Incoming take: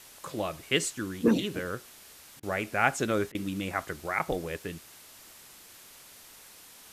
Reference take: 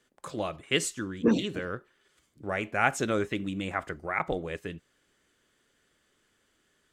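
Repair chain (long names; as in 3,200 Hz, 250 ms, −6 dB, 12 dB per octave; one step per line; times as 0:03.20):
repair the gap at 0:02.40/0:03.32, 27 ms
noise reduction from a noise print 19 dB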